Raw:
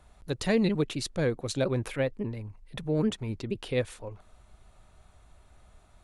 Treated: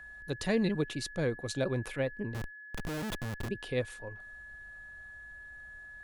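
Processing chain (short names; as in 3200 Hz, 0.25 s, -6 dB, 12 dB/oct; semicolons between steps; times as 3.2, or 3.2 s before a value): 2.34–3.49 Schmitt trigger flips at -35 dBFS; whine 1700 Hz -42 dBFS; gain -4 dB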